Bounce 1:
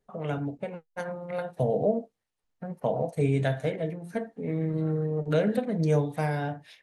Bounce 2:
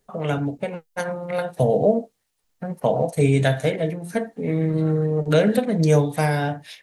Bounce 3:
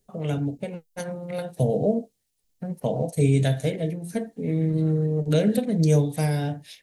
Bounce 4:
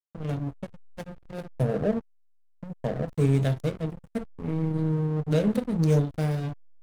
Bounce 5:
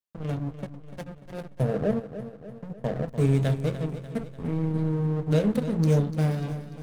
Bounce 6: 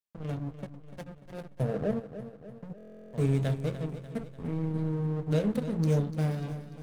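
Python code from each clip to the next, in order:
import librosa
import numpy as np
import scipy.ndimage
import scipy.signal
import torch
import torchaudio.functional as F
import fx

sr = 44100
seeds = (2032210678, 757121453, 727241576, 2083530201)

y1 = fx.high_shelf(x, sr, hz=3500.0, db=9.0)
y1 = F.gain(torch.from_numpy(y1), 7.0).numpy()
y2 = fx.peak_eq(y1, sr, hz=1200.0, db=-12.5, octaves=2.2)
y3 = fx.backlash(y2, sr, play_db=-23.0)
y3 = F.gain(torch.from_numpy(y3), -2.0).numpy()
y4 = fx.echo_feedback(y3, sr, ms=295, feedback_pct=53, wet_db=-12.0)
y5 = fx.buffer_glitch(y4, sr, at_s=(2.76,), block=1024, repeats=15)
y5 = F.gain(torch.from_numpy(y5), -4.5).numpy()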